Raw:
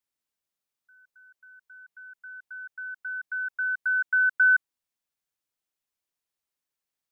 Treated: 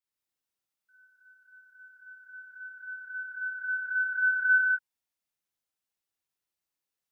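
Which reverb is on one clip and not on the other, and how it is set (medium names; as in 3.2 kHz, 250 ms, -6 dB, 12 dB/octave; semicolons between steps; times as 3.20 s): gated-style reverb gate 230 ms flat, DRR -7.5 dB; trim -9.5 dB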